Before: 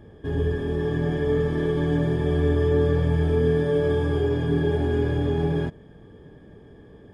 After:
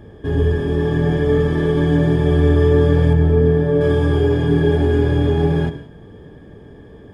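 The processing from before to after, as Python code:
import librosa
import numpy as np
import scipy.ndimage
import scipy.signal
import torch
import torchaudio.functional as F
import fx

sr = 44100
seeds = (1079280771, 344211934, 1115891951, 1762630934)

y = fx.high_shelf(x, sr, hz=2100.0, db=-12.0, at=(3.13, 3.81))
y = fx.rev_gated(y, sr, seeds[0], gate_ms=210, shape='flat', drr_db=11.0)
y = F.gain(torch.from_numpy(y), 6.5).numpy()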